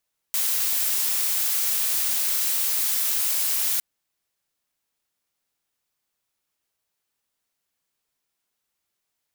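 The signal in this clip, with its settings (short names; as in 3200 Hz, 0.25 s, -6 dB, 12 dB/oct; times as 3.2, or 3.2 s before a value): noise blue, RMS -23.5 dBFS 3.46 s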